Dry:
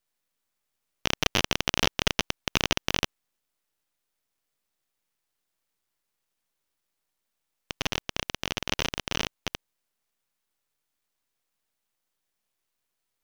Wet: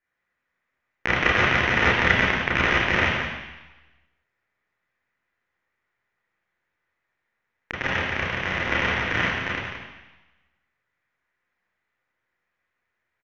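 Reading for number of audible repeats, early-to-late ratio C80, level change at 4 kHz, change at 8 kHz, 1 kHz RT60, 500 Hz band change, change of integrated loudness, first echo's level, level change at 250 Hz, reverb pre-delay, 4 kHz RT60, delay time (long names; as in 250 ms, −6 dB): 1, 2.0 dB, −1.0 dB, −10.5 dB, 1.1 s, +7.0 dB, +7.0 dB, −7.5 dB, +6.0 dB, 27 ms, 1.1 s, 175 ms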